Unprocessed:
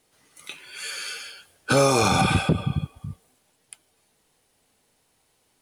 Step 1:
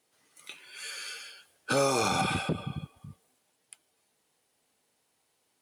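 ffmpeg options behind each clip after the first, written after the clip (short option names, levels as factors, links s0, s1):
-af "highpass=f=200:p=1,volume=0.473"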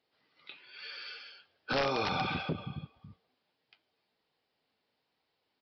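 -af "crystalizer=i=0.5:c=0,aresample=11025,aeval=exprs='(mod(7.94*val(0)+1,2)-1)/7.94':c=same,aresample=44100,flanger=delay=1.3:depth=8.8:regen=-70:speed=0.93:shape=triangular"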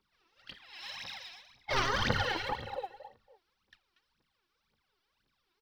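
-af "aecho=1:1:236:0.251,aeval=exprs='val(0)*sin(2*PI*670*n/s)':c=same,aphaser=in_gain=1:out_gain=1:delay=3.1:decay=0.78:speed=1.9:type=triangular"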